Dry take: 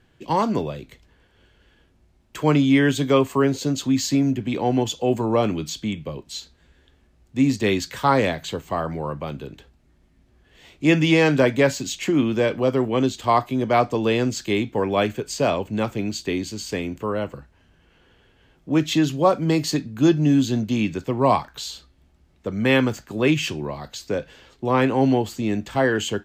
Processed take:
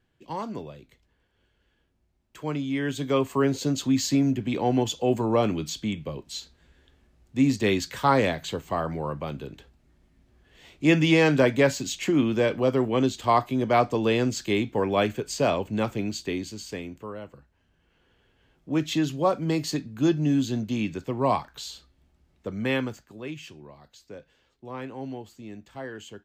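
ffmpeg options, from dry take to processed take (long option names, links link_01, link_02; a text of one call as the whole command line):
ffmpeg -i in.wav -af "volume=5.5dB,afade=type=in:start_time=2.73:duration=0.87:silence=0.334965,afade=type=out:start_time=15.9:duration=1.31:silence=0.281838,afade=type=in:start_time=17.21:duration=1.62:silence=0.398107,afade=type=out:start_time=22.48:duration=0.74:silence=0.251189" out.wav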